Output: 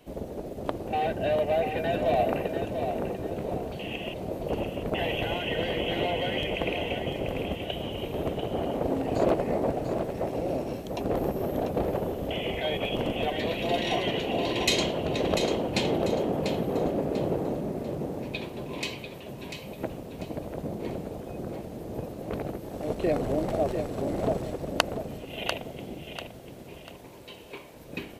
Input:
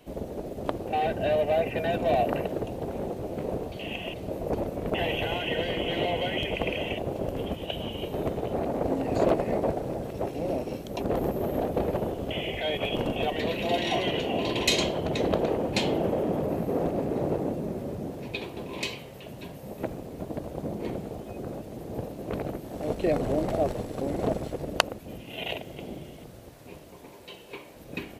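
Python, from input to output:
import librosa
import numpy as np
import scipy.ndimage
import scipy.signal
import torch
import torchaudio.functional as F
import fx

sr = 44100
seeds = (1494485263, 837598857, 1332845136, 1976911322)

p1 = x + fx.echo_feedback(x, sr, ms=693, feedback_pct=33, wet_db=-7.5, dry=0)
y = F.gain(torch.from_numpy(p1), -1.0).numpy()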